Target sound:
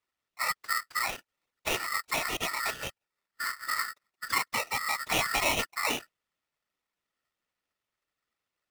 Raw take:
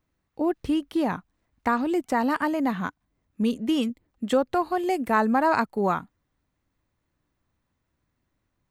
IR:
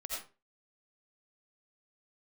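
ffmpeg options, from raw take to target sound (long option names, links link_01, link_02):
-af "acrusher=bits=5:mode=log:mix=0:aa=0.000001,highpass=260,lowpass=6200,afftfilt=real='hypot(re,im)*cos(2*PI*random(0))':imag='hypot(re,im)*sin(2*PI*random(1))':win_size=512:overlap=0.75,aeval=exprs='val(0)*sgn(sin(2*PI*1600*n/s))':channel_layout=same"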